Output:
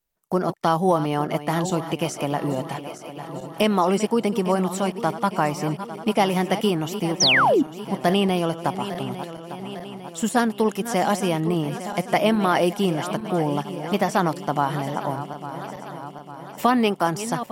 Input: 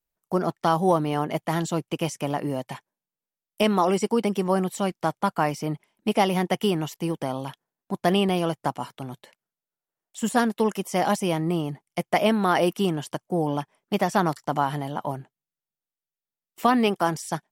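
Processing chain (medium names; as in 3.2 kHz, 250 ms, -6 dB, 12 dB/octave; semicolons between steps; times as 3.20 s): backward echo that repeats 426 ms, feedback 71%, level -13 dB; in parallel at -2 dB: compression, threshold -32 dBFS, peak gain reduction 16 dB; on the sum: painted sound fall, 7.20–7.63 s, 240–6500 Hz -17 dBFS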